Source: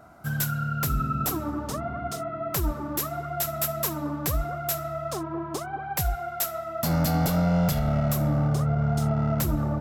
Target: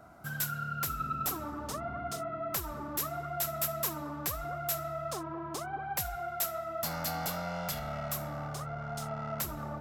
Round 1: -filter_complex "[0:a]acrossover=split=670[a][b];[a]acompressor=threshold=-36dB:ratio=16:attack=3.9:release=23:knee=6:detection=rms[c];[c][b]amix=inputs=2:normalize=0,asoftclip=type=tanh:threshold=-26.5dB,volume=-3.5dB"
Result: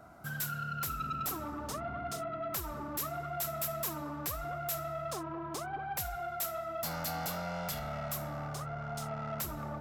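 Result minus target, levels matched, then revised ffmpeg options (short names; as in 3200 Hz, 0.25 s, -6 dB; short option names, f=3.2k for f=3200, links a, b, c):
soft clip: distortion +11 dB
-filter_complex "[0:a]acrossover=split=670[a][b];[a]acompressor=threshold=-36dB:ratio=16:attack=3.9:release=23:knee=6:detection=rms[c];[c][b]amix=inputs=2:normalize=0,asoftclip=type=tanh:threshold=-17.5dB,volume=-3.5dB"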